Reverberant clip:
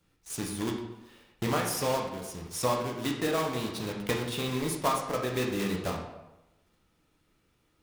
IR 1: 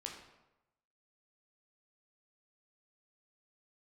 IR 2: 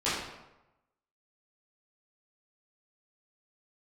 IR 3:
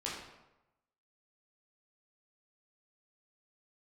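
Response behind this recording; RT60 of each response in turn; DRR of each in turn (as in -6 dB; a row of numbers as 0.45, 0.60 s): 1; 0.95, 0.95, 0.95 s; 0.0, -12.5, -6.0 dB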